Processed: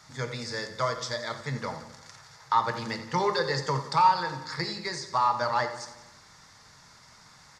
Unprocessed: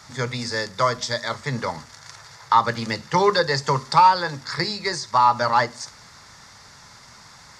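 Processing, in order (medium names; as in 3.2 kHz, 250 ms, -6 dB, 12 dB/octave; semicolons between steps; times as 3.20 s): feedback delay 87 ms, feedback 59%, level -13.5 dB; on a send at -9 dB: reverberation RT60 0.60 s, pre-delay 6 ms; on the sum: trim -8 dB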